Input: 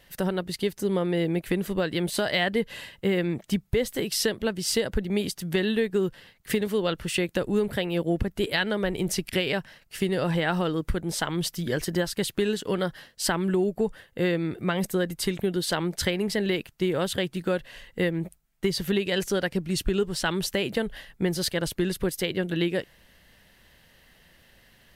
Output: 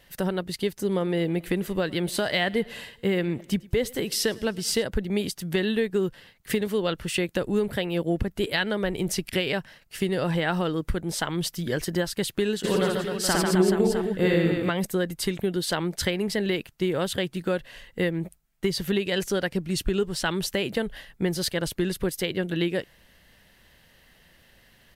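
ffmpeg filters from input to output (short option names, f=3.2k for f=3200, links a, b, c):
-filter_complex "[0:a]asplit=3[a][b][c];[a]afade=t=out:st=0.91:d=0.02[d];[b]aecho=1:1:105|210|315|420:0.0708|0.0396|0.0222|0.0124,afade=t=in:st=0.91:d=0.02,afade=t=out:st=4.82:d=0.02[e];[c]afade=t=in:st=4.82:d=0.02[f];[d][e][f]amix=inputs=3:normalize=0,asplit=3[g][h][i];[g]afade=t=out:st=12.63:d=0.02[j];[h]aecho=1:1:60|144|261.6|426.2|656.7:0.794|0.631|0.501|0.398|0.316,afade=t=in:st=12.63:d=0.02,afade=t=out:st=14.69:d=0.02[k];[i]afade=t=in:st=14.69:d=0.02[l];[j][k][l]amix=inputs=3:normalize=0"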